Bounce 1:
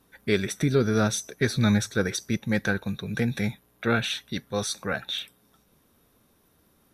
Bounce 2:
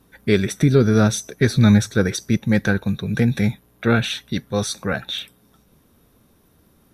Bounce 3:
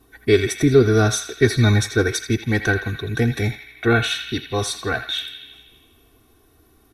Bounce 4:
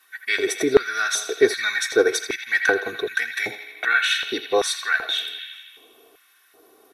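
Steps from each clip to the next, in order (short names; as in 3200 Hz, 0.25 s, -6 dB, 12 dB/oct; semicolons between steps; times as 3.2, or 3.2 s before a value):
low shelf 350 Hz +6.5 dB; gain +3.5 dB
comb 2.7 ms, depth 89%; narrowing echo 82 ms, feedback 73%, band-pass 2500 Hz, level -8 dB; gain -1 dB
in parallel at +1.5 dB: compressor, threshold -26 dBFS, peak gain reduction 16.5 dB; on the sum: LFO high-pass square 1.3 Hz 480–1700 Hz; gain -4 dB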